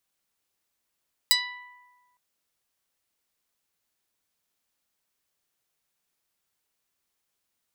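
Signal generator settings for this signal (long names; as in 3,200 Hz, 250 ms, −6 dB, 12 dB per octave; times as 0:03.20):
Karplus-Strong string B5, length 0.86 s, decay 1.56 s, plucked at 0.09, medium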